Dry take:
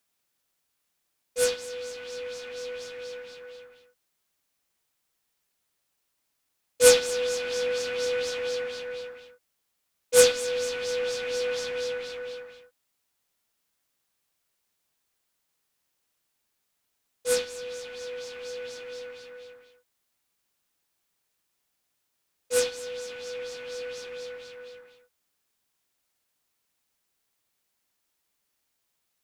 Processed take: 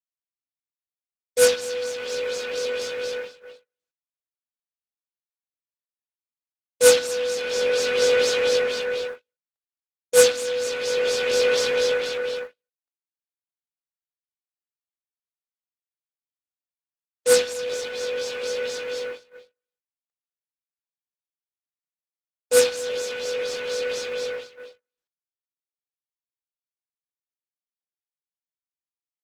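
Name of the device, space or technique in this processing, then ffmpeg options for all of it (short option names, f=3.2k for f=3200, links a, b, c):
video call: -af "highpass=f=120:p=1,dynaudnorm=f=140:g=11:m=10dB,agate=range=-47dB:threshold=-32dB:ratio=16:detection=peak" -ar 48000 -c:a libopus -b:a 16k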